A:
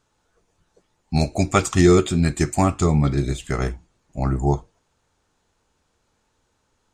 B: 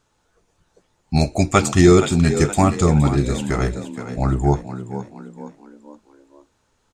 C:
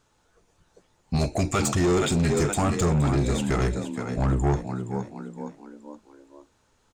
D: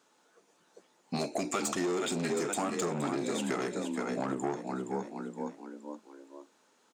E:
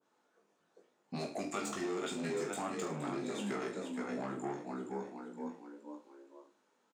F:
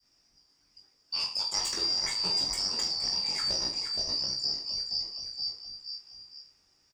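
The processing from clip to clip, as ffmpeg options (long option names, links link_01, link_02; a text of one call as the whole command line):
ffmpeg -i in.wav -filter_complex "[0:a]asplit=5[link_01][link_02][link_03][link_04][link_05];[link_02]adelay=469,afreqshift=53,volume=-11.5dB[link_06];[link_03]adelay=938,afreqshift=106,volume=-18.6dB[link_07];[link_04]adelay=1407,afreqshift=159,volume=-25.8dB[link_08];[link_05]adelay=1876,afreqshift=212,volume=-32.9dB[link_09];[link_01][link_06][link_07][link_08][link_09]amix=inputs=5:normalize=0,volume=2.5dB" out.wav
ffmpeg -i in.wav -af "alimiter=limit=-9.5dB:level=0:latency=1:release=12,asoftclip=type=tanh:threshold=-17.5dB" out.wav
ffmpeg -i in.wav -af "highpass=frequency=220:width=0.5412,highpass=frequency=220:width=1.3066,acompressor=threshold=-29dB:ratio=5" out.wav
ffmpeg -i in.wav -filter_complex "[0:a]highshelf=frequency=3000:gain=-9.5,asplit=2[link_01][link_02];[link_02]aecho=0:1:20|44|72.8|107.4|148.8:0.631|0.398|0.251|0.158|0.1[link_03];[link_01][link_03]amix=inputs=2:normalize=0,adynamicequalizer=threshold=0.00282:dfrequency=1500:dqfactor=0.7:tfrequency=1500:tqfactor=0.7:attack=5:release=100:ratio=0.375:range=2.5:mode=boostabove:tftype=highshelf,volume=-8dB" out.wav
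ffmpeg -i in.wav -af "afftfilt=real='real(if(lt(b,272),68*(eq(floor(b/68),0)*1+eq(floor(b/68),1)*2+eq(floor(b/68),2)*3+eq(floor(b/68),3)*0)+mod(b,68),b),0)':imag='imag(if(lt(b,272),68*(eq(floor(b/68),0)*1+eq(floor(b/68),1)*2+eq(floor(b/68),2)*3+eq(floor(b/68),3)*0)+mod(b,68),b),0)':win_size=2048:overlap=0.75,volume=7.5dB" out.wav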